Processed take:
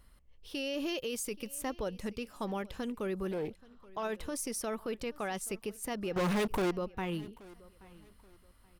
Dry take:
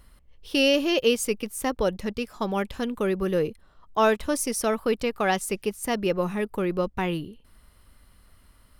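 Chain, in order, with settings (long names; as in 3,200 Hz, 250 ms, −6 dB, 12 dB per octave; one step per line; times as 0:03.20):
0:00.86–0:01.55: high-shelf EQ 5,200 Hz +6 dB
brickwall limiter −20.5 dBFS, peak gain reduction 11.5 dB
0:06.16–0:06.71: leveller curve on the samples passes 5
repeating echo 828 ms, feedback 31%, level −22 dB
0:03.31–0:04.03: highs frequency-modulated by the lows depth 0.32 ms
level −7 dB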